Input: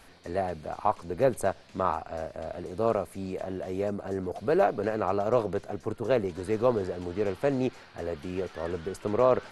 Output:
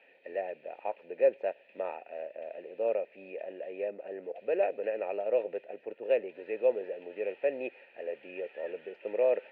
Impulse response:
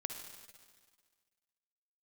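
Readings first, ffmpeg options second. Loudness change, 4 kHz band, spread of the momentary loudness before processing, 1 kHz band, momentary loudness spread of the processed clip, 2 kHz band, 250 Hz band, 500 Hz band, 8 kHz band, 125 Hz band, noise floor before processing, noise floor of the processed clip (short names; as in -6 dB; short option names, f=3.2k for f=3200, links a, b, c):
-4.5 dB, under -10 dB, 10 LU, -11.5 dB, 13 LU, -4.5 dB, -14.0 dB, -3.0 dB, n/a, under -25 dB, -53 dBFS, -61 dBFS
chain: -filter_complex "[0:a]asplit=3[a][b][c];[a]bandpass=f=530:t=q:w=8,volume=0dB[d];[b]bandpass=f=1.84k:t=q:w=8,volume=-6dB[e];[c]bandpass=f=2.48k:t=q:w=8,volume=-9dB[f];[d][e][f]amix=inputs=3:normalize=0,highpass=220,equalizer=f=510:t=q:w=4:g=-5,equalizer=f=910:t=q:w=4:g=9,equalizer=f=1.6k:t=q:w=4:g=-5,equalizer=f=2.5k:t=q:w=4:g=8,lowpass=f=3.3k:w=0.5412,lowpass=f=3.3k:w=1.3066,volume=5.5dB"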